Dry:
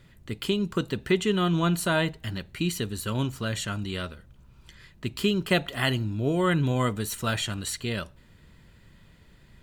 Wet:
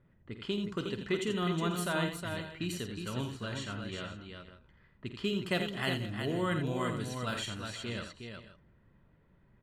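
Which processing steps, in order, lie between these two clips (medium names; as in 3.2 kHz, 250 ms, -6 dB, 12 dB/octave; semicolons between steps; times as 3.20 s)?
level-controlled noise filter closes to 1.2 kHz, open at -22.5 dBFS; bass shelf 88 Hz -5.5 dB; multi-tap echo 50/84/363/490/523 ms -11/-8/-6/-18/-18 dB; trim -8.5 dB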